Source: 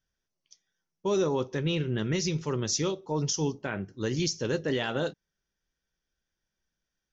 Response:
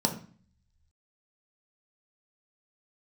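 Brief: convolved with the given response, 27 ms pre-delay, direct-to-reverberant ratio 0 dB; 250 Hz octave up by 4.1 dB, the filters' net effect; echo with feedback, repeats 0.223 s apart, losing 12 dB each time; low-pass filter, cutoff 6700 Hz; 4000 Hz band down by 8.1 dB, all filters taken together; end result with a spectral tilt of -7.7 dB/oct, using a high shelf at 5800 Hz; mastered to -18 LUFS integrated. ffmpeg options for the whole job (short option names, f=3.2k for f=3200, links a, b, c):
-filter_complex "[0:a]lowpass=6.7k,equalizer=f=250:t=o:g=6,equalizer=f=4k:t=o:g=-7,highshelf=f=5.8k:g=-8.5,aecho=1:1:223|446|669:0.251|0.0628|0.0157,asplit=2[a][b];[1:a]atrim=start_sample=2205,adelay=27[c];[b][c]afir=irnorm=-1:irlink=0,volume=-9dB[d];[a][d]amix=inputs=2:normalize=0,volume=2dB"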